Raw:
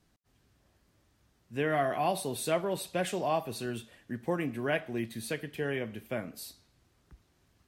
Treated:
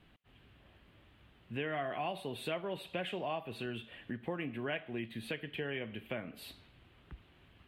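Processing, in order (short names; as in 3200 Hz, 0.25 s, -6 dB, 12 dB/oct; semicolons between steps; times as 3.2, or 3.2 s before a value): resonant high shelf 4200 Hz -12 dB, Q 3; compressor 2.5:1, threshold -48 dBFS, peak gain reduction 16.5 dB; gain +6 dB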